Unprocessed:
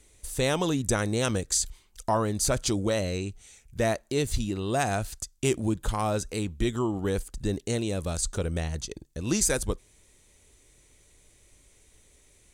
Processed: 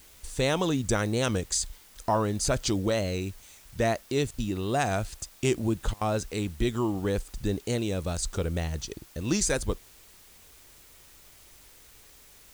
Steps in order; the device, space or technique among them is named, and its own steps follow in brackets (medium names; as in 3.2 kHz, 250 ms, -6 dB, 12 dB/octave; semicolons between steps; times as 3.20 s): worn cassette (low-pass 7.6 kHz 12 dB/octave; wow and flutter; level dips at 4.31/5.94 s, 71 ms -25 dB; white noise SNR 25 dB)